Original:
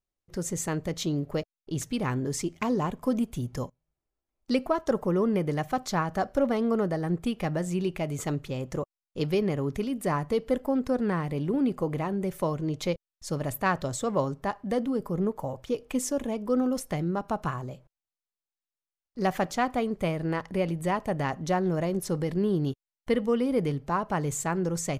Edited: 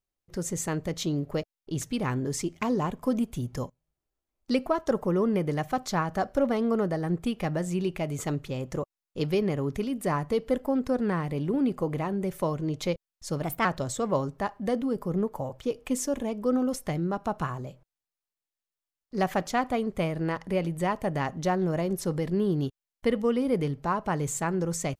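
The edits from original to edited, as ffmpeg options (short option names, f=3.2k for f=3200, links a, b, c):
-filter_complex "[0:a]asplit=3[a][b][c];[a]atrim=end=13.424[d];[b]atrim=start=13.42:end=13.69,asetpts=PTS-STARTPTS,asetrate=51597,aresample=44100[e];[c]atrim=start=13.686[f];[d][e]acrossfade=d=0.004:c1=hsin:c2=hsin[g];[g][f]acrossfade=d=0.004:c1=hsin:c2=hsin"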